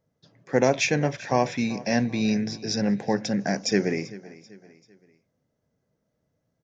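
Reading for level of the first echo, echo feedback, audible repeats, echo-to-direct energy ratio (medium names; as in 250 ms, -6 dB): -19.0 dB, 42%, 3, -18.0 dB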